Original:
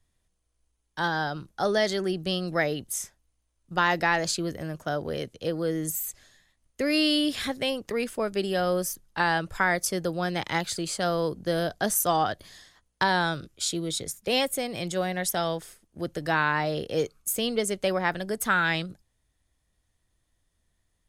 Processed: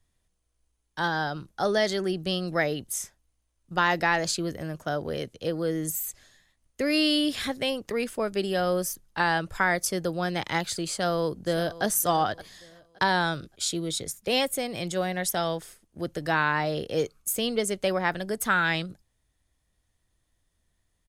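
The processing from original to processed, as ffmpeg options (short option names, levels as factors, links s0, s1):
-filter_complex "[0:a]asplit=2[s0][s1];[s1]afade=t=in:st=10.89:d=0.01,afade=t=out:st=11.84:d=0.01,aecho=0:1:570|1140|1710:0.149624|0.0448871|0.0134661[s2];[s0][s2]amix=inputs=2:normalize=0"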